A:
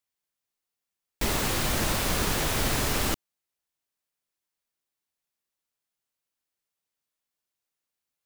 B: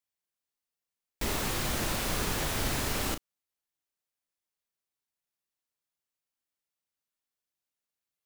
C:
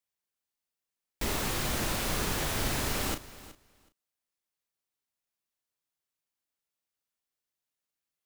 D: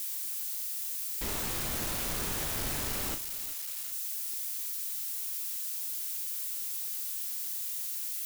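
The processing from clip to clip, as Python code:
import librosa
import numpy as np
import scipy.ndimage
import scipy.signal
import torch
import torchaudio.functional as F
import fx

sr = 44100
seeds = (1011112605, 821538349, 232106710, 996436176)

y1 = fx.doubler(x, sr, ms=35.0, db=-9)
y1 = F.gain(torch.from_numpy(y1), -5.0).numpy()
y2 = fx.echo_feedback(y1, sr, ms=372, feedback_pct=15, wet_db=-17.5)
y3 = y2 + 0.5 * 10.0 ** (-25.5 / 20.0) * np.diff(np.sign(y2), prepend=np.sign(y2[:1]))
y3 = F.gain(torch.from_numpy(y3), -5.5).numpy()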